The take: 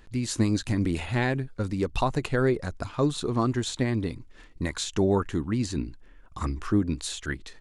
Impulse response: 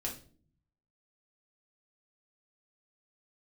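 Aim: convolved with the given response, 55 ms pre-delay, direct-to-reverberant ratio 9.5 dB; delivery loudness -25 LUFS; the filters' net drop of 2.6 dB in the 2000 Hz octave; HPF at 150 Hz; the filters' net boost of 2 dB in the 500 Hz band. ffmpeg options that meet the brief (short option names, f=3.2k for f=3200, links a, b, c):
-filter_complex "[0:a]highpass=150,equalizer=f=500:t=o:g=3,equalizer=f=2k:t=o:g=-3.5,asplit=2[a][b];[1:a]atrim=start_sample=2205,adelay=55[c];[b][c]afir=irnorm=-1:irlink=0,volume=-10.5dB[d];[a][d]amix=inputs=2:normalize=0,volume=2.5dB"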